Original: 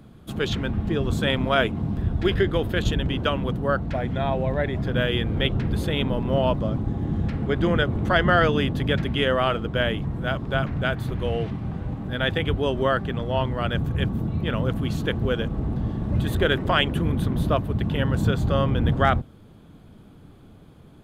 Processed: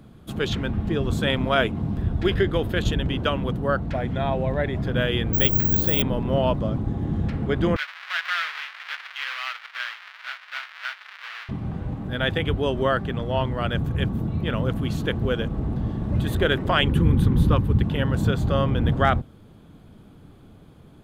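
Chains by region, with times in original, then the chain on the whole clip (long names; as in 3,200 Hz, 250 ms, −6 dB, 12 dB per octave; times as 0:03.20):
0:05.33–0:06.02: parametric band 2,200 Hz −2.5 dB 0.24 octaves + bad sample-rate conversion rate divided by 2×, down none, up zero stuff
0:07.76–0:11.49: each half-wave held at its own peak + high-pass filter 1,500 Hz 24 dB per octave + high-frequency loss of the air 340 metres
0:16.83–0:17.83: Butterworth band-reject 650 Hz, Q 4.1 + low-shelf EQ 190 Hz +8 dB
whole clip: no processing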